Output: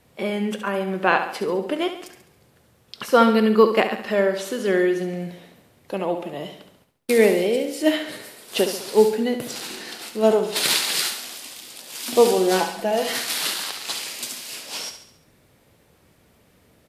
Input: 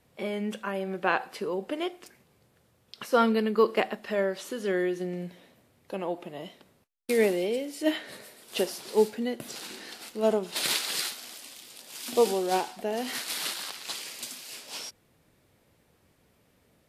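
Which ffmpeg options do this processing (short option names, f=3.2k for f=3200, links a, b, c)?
-filter_complex "[0:a]asettb=1/sr,asplit=3[a][b][c];[a]atrim=end=12.374[d];[b]atrim=start=12.37:end=13.13,asetpts=PTS-STARTPTS,afade=t=in:d=0.004:c=qsin,afade=t=out:st=0.756:d=0.004:c=qsin,aecho=1:1:6:0.65,atrim=end_sample=33516[e];[c]atrim=start=13.126[f];[d][e]acrossfade=d=0.004:c1=hsin:c2=qsin[g];[g][f]acrossfade=d=0.004:c1=qsin:c2=hsin,aecho=1:1:69|138|207|276|345|414:0.355|0.174|0.0852|0.0417|0.0205|0.01,volume=7dB"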